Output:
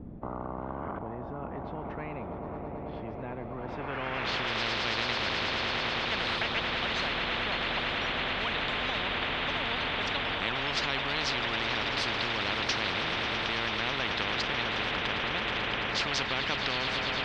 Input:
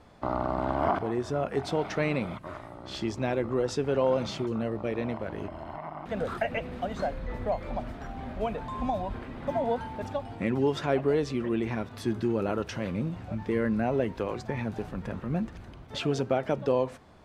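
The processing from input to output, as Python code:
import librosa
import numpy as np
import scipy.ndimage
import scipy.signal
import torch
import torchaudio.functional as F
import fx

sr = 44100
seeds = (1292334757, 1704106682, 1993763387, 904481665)

y = fx.peak_eq(x, sr, hz=2800.0, db=14.0, octaves=2.2)
y = fx.echo_swell(y, sr, ms=109, loudest=8, wet_db=-17.5)
y = fx.filter_sweep_lowpass(y, sr, from_hz=210.0, to_hz=2300.0, start_s=3.54, end_s=4.6, q=2.2)
y = fx.spectral_comp(y, sr, ratio=10.0)
y = F.gain(torch.from_numpy(y), -8.0).numpy()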